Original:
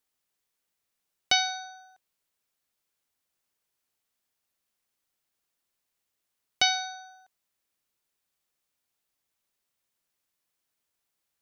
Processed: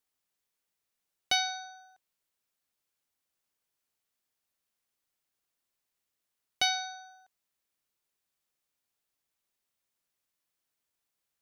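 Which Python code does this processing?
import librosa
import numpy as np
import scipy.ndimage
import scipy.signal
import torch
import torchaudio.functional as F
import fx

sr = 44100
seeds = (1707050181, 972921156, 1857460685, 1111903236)

y = 10.0 ** (-10.0 / 20.0) * np.tanh(x / 10.0 ** (-10.0 / 20.0))
y = y * 10.0 ** (-3.0 / 20.0)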